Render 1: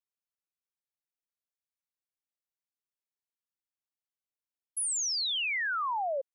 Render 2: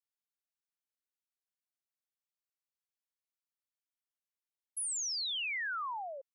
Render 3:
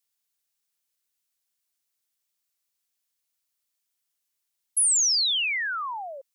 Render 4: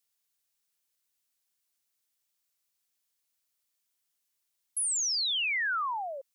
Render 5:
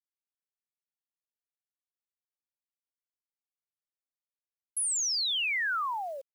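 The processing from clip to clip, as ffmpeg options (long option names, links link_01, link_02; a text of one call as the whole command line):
ffmpeg -i in.wav -af "highpass=860,volume=-5dB" out.wav
ffmpeg -i in.wav -af "highshelf=frequency=2600:gain=11.5,volume=4.5dB" out.wav
ffmpeg -i in.wav -af "alimiter=level_in=2.5dB:limit=-24dB:level=0:latency=1,volume=-2.5dB" out.wav
ffmpeg -i in.wav -af "acrusher=bits=9:mix=0:aa=0.000001" out.wav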